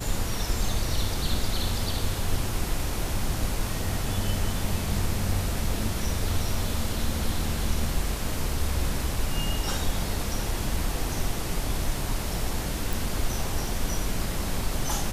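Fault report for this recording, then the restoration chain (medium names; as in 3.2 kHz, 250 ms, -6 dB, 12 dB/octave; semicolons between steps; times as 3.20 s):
12.93 s: pop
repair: de-click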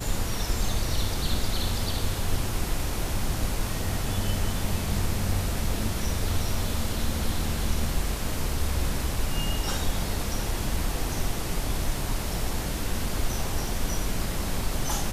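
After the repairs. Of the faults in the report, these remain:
nothing left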